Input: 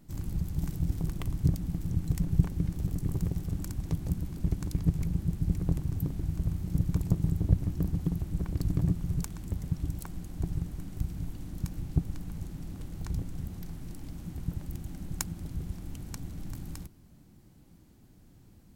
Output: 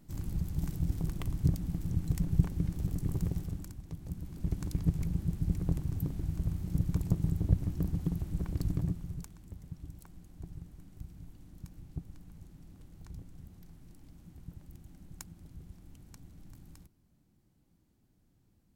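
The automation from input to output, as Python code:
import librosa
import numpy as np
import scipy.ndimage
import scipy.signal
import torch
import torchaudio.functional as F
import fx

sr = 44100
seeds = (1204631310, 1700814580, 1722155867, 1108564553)

y = fx.gain(x, sr, db=fx.line((3.39, -2.0), (3.85, -12.5), (4.6, -2.5), (8.66, -2.5), (9.38, -13.0)))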